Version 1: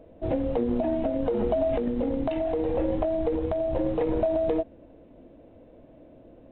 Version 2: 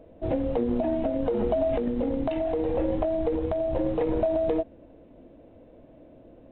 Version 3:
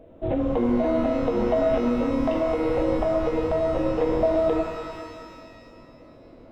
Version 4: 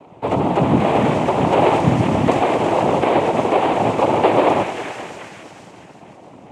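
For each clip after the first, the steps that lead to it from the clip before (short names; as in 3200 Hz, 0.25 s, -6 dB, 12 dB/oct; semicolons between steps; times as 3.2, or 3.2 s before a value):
nothing audible
shimmer reverb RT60 2 s, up +12 st, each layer -8 dB, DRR 3.5 dB; gain +1 dB
noise vocoder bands 4; gain +7 dB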